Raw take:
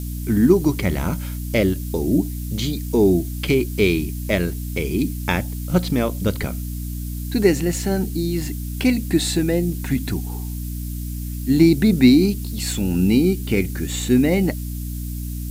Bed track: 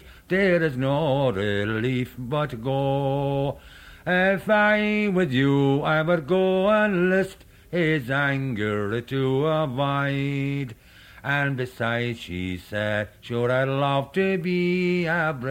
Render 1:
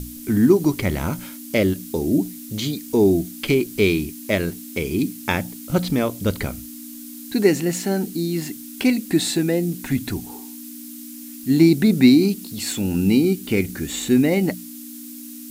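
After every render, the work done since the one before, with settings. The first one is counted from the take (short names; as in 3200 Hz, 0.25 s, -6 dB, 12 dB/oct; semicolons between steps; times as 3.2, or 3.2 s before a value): notches 60/120/180 Hz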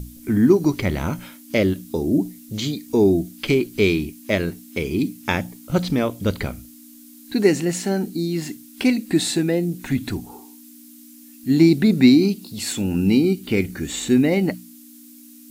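noise print and reduce 8 dB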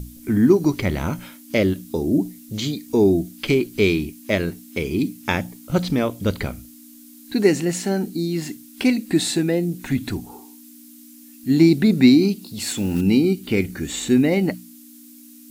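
12.59–13.02 block floating point 5-bit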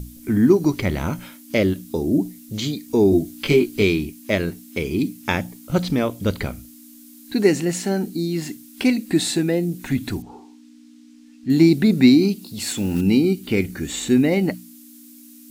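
3.1–3.83 doubler 20 ms -2.5 dB; 10.22–11.5 air absorption 130 m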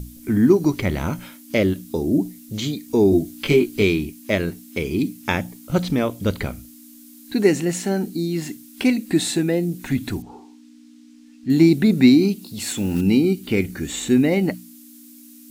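dynamic EQ 4700 Hz, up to -4 dB, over -44 dBFS, Q 4.3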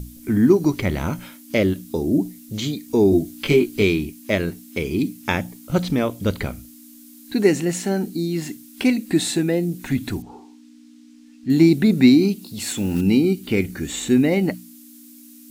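nothing audible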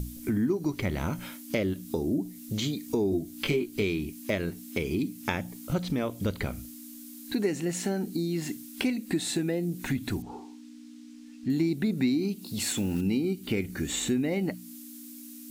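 compressor 3:1, threshold -28 dBFS, peak gain reduction 14.5 dB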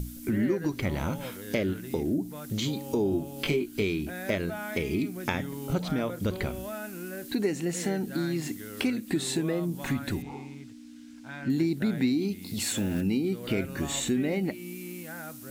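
add bed track -18.5 dB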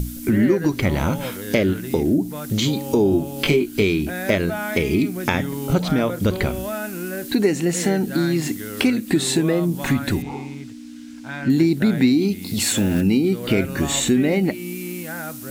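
gain +9.5 dB; limiter -2 dBFS, peak gain reduction 1.5 dB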